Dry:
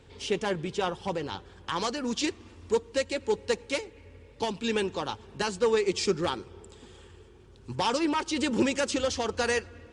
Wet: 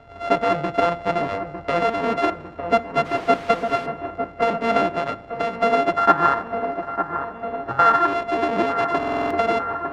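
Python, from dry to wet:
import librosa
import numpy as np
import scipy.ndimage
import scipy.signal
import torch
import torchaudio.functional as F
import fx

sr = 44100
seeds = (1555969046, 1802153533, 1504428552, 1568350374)

y = np.r_[np.sort(x[:len(x) // 64 * 64].reshape(-1, 64), axis=1).ravel(), x[len(x) // 64 * 64:]]
y = fx.spec_box(y, sr, start_s=5.97, length_s=2.09, low_hz=760.0, high_hz=1900.0, gain_db=12)
y = fx.echo_wet_lowpass(y, sr, ms=903, feedback_pct=67, hz=1700.0, wet_db=-8.0)
y = fx.dmg_noise_colour(y, sr, seeds[0], colour='white', level_db=-40.0, at=(3.04, 3.85), fade=0.02)
y = scipy.signal.sosfilt(scipy.signal.butter(2, 3000.0, 'lowpass', fs=sr, output='sos'), y)
y = fx.peak_eq(y, sr, hz=230.0, db=-2.5, octaves=1.6)
y = fx.rider(y, sr, range_db=10, speed_s=2.0)
y = fx.peak_eq(y, sr, hz=690.0, db=8.0, octaves=3.0)
y = fx.room_shoebox(y, sr, seeds[1], volume_m3=3100.0, walls='furnished', distance_m=0.48)
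y = fx.buffer_glitch(y, sr, at_s=(8.98,), block=2048, repeats=6)
y = fx.band_squash(y, sr, depth_pct=70, at=(7.89, 9.51))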